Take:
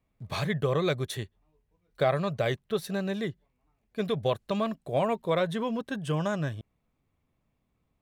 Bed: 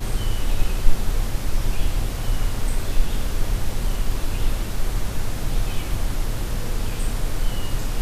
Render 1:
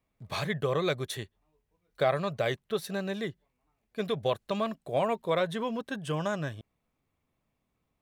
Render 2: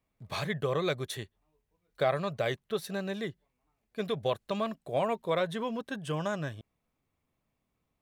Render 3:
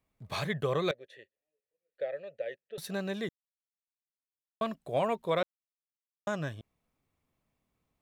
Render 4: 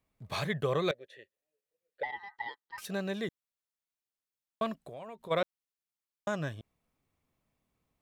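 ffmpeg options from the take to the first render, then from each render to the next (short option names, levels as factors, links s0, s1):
-af "lowshelf=f=250:g=-6"
-af "volume=0.841"
-filter_complex "[0:a]asettb=1/sr,asplit=3[s0][s1][s2];[s0]atrim=end=0.914[s3];[s1]atrim=start=0.91:end=2.78,asetpts=PTS-STARTPTS,afade=t=in:d=0.004:c=qsin,afade=t=out:st=1.866:d=0.004:c=qsin,asplit=3[s4][s5][s6];[s4]bandpass=f=530:t=q:w=8,volume=1[s7];[s5]bandpass=f=1840:t=q:w=8,volume=0.501[s8];[s6]bandpass=f=2480:t=q:w=8,volume=0.355[s9];[s7][s8][s9]amix=inputs=3:normalize=0[s10];[s2]atrim=start=2.776[s11];[s3][s10]acrossfade=d=0.004:c1=hsin:c2=qsin[s12];[s12][s11]acrossfade=d=0.004:c1=qsin:c2=hsin,asplit=5[s13][s14][s15][s16][s17];[s13]atrim=end=3.29,asetpts=PTS-STARTPTS,afade=t=out:st=3.286:d=0.004:c=hsin[s18];[s14]atrim=start=3.29:end=4.61,asetpts=PTS-STARTPTS,volume=0[s19];[s15]atrim=start=4.61:end=5.43,asetpts=PTS-STARTPTS,afade=t=in:d=0.004:c=hsin,afade=t=out:st=0.816:d=0.004:c=hsin[s20];[s16]atrim=start=5.43:end=6.27,asetpts=PTS-STARTPTS,volume=0[s21];[s17]atrim=start=6.27,asetpts=PTS-STARTPTS,afade=t=in:d=0.004:c=hsin[s22];[s18][s19][s20][s21][s22]concat=n=5:v=0:a=1"
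-filter_complex "[0:a]asettb=1/sr,asplit=3[s0][s1][s2];[s0]atrim=end=2.034[s3];[s1]atrim=start=2.03:end=2.85,asetpts=PTS-STARTPTS,afade=t=in:d=0.004:c=qsin,afade=t=out:st=0.816:d=0.004:c=qsin,aeval=exprs='val(0)*sin(2*PI*1400*n/s)':c=same[s4];[s2]atrim=start=2.846[s5];[s3][s4]acrossfade=d=0.004:c1=hsin:c2=qsin[s6];[s6][s5]acrossfade=d=0.004:c1=qsin:c2=hsin,asplit=3[s7][s8][s9];[s7]afade=t=out:st=4.8:d=0.02[s10];[s8]acompressor=threshold=0.00708:ratio=5:attack=3.2:release=140:knee=1:detection=peak,afade=t=in:st=4.8:d=0.02,afade=t=out:st=5.3:d=0.02[s11];[s9]afade=t=in:st=5.3:d=0.02[s12];[s10][s11][s12]amix=inputs=3:normalize=0"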